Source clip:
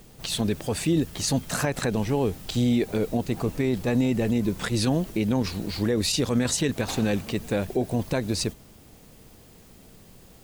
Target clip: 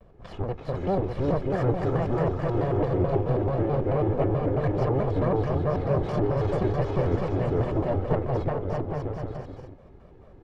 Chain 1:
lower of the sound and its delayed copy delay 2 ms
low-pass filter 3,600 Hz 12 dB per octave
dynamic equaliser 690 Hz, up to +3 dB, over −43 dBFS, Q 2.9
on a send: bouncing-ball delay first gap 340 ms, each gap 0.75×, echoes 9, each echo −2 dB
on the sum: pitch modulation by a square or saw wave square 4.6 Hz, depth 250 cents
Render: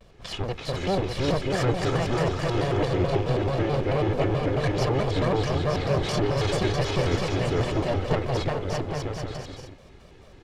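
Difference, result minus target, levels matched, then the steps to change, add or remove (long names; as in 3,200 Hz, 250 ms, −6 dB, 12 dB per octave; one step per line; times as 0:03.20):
4,000 Hz band +16.5 dB
change: low-pass filter 1,100 Hz 12 dB per octave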